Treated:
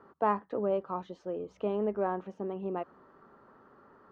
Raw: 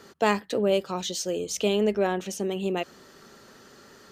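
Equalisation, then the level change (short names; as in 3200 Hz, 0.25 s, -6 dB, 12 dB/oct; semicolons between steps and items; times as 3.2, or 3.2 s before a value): synth low-pass 1100 Hz, resonance Q 2.6; bell 290 Hz +3.5 dB 0.21 oct; -8.5 dB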